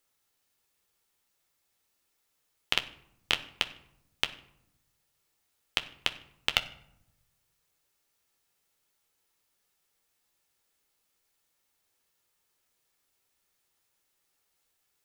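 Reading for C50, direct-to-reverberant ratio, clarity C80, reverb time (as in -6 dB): 15.0 dB, 7.5 dB, 18.0 dB, 0.80 s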